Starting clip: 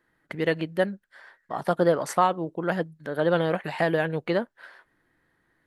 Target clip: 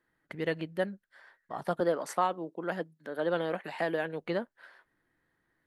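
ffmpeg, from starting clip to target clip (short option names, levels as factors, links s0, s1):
-filter_complex "[0:a]asettb=1/sr,asplit=3[s0][s1][s2];[s0]atrim=end=1.804[s3];[s1]atrim=start=1.8:end=4.21,asetpts=PTS-STARTPTS,afade=t=in:d=0.004:c=qsin,afade=t=out:st=2.406:d=0.004:c=qsin,highpass=f=190:w=0.5412,highpass=f=190:w=1.3066[s4];[s2]atrim=start=4.206[s5];[s3][s4]acrossfade=d=0.004:c1=hsin:c2=qsin[s6];[s6][s5]acrossfade=d=0.004:c1=qsin:c2=hsin,volume=0.447"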